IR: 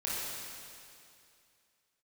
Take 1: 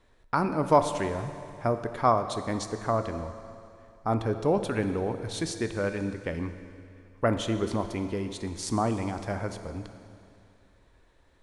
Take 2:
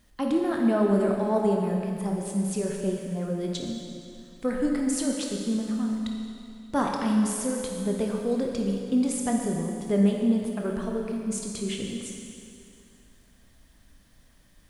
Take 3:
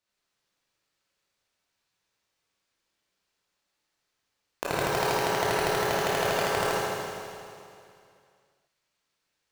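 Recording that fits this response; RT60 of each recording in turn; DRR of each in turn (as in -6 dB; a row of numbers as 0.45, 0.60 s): 3; 2.5, 2.5, 2.5 s; 8.0, 0.0, -8.0 dB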